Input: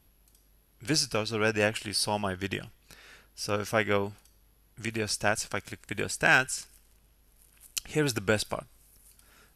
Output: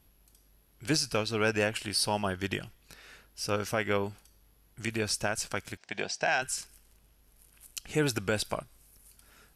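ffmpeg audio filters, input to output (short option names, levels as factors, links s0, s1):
-filter_complex "[0:a]alimiter=limit=0.158:level=0:latency=1:release=133,asettb=1/sr,asplit=3[s0][s1][s2];[s0]atrim=end=5.774[s3];[s1]atrim=start=5.77:end=6.42,asetpts=PTS-STARTPTS,afade=t=in:d=0.004:c=qsin,afade=t=out:st=0.646:d=0.004:c=qsin,highpass=220,equalizer=f=290:t=q:w=4:g=-8,equalizer=f=460:t=q:w=4:g=-4,equalizer=f=710:t=q:w=4:g=9,equalizer=f=1300:t=q:w=4:g=-6,equalizer=f=5500:t=q:w=4:g=6,lowpass=f=6000:w=0.5412,lowpass=f=6000:w=1.3066[s4];[s2]atrim=start=6.416[s5];[s3][s4]acrossfade=d=0.004:c1=hsin:c2=qsin[s6];[s6][s5]acrossfade=d=0.004:c1=qsin:c2=hsin"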